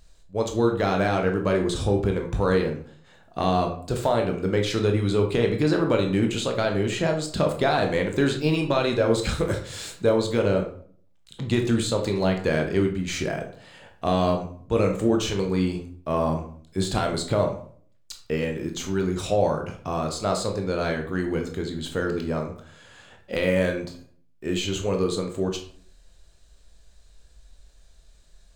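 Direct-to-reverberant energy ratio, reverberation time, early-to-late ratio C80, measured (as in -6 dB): 3.0 dB, 0.50 s, 13.0 dB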